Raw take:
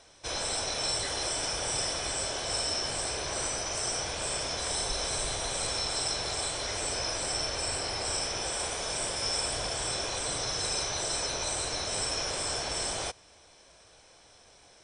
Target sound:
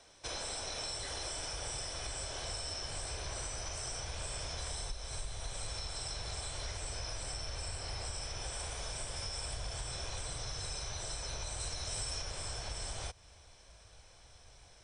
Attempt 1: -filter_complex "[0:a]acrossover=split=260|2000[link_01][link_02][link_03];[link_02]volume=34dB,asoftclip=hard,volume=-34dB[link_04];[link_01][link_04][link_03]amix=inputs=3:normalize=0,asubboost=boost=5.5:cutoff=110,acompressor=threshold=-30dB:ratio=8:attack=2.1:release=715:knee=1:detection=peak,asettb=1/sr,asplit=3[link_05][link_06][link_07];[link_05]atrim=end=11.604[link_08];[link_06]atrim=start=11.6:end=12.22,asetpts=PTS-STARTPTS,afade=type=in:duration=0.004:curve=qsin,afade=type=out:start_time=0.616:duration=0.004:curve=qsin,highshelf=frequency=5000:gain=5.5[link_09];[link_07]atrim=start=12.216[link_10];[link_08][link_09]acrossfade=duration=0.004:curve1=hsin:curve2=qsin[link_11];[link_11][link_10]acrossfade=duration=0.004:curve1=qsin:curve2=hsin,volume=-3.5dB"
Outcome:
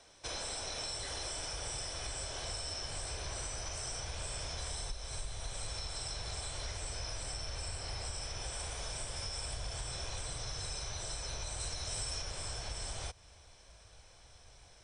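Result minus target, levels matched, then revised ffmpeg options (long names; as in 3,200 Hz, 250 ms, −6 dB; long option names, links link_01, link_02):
gain into a clipping stage and back: distortion +35 dB
-filter_complex "[0:a]acrossover=split=260|2000[link_01][link_02][link_03];[link_02]volume=26.5dB,asoftclip=hard,volume=-26.5dB[link_04];[link_01][link_04][link_03]amix=inputs=3:normalize=0,asubboost=boost=5.5:cutoff=110,acompressor=threshold=-30dB:ratio=8:attack=2.1:release=715:knee=1:detection=peak,asettb=1/sr,asplit=3[link_05][link_06][link_07];[link_05]atrim=end=11.604[link_08];[link_06]atrim=start=11.6:end=12.22,asetpts=PTS-STARTPTS,afade=type=in:duration=0.004:curve=qsin,afade=type=out:start_time=0.616:duration=0.004:curve=qsin,highshelf=frequency=5000:gain=5.5[link_09];[link_07]atrim=start=12.216[link_10];[link_08][link_09]acrossfade=duration=0.004:curve1=hsin:curve2=qsin[link_11];[link_11][link_10]acrossfade=duration=0.004:curve1=qsin:curve2=hsin,volume=-3.5dB"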